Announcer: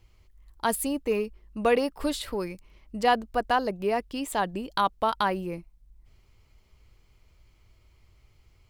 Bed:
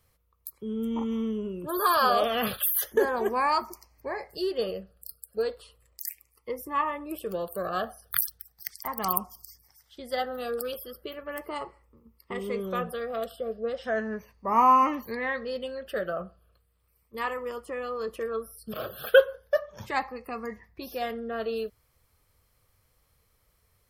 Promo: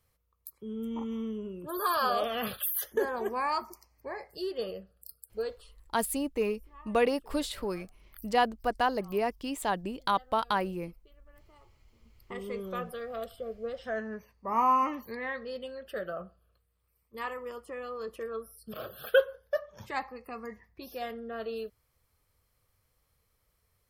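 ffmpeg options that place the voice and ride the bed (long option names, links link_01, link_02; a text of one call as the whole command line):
ffmpeg -i stem1.wav -i stem2.wav -filter_complex "[0:a]adelay=5300,volume=-3dB[link_01];[1:a]volume=15dB,afade=type=out:start_time=5.69:duration=0.39:silence=0.0944061,afade=type=in:start_time=11.63:duration=0.72:silence=0.0944061[link_02];[link_01][link_02]amix=inputs=2:normalize=0" out.wav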